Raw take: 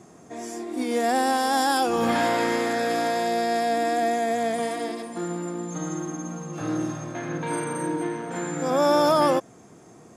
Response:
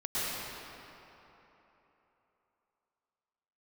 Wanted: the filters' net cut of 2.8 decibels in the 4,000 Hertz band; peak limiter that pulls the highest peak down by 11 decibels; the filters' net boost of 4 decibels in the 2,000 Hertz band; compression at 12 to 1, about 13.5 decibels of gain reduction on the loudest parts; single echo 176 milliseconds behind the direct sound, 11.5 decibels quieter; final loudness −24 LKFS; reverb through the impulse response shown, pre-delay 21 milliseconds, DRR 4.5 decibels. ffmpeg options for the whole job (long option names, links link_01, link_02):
-filter_complex "[0:a]equalizer=frequency=2000:width_type=o:gain=6,equalizer=frequency=4000:width_type=o:gain=-5.5,acompressor=threshold=-29dB:ratio=12,alimiter=level_in=8dB:limit=-24dB:level=0:latency=1,volume=-8dB,aecho=1:1:176:0.266,asplit=2[link_01][link_02];[1:a]atrim=start_sample=2205,adelay=21[link_03];[link_02][link_03]afir=irnorm=-1:irlink=0,volume=-13dB[link_04];[link_01][link_04]amix=inputs=2:normalize=0,volume=14.5dB"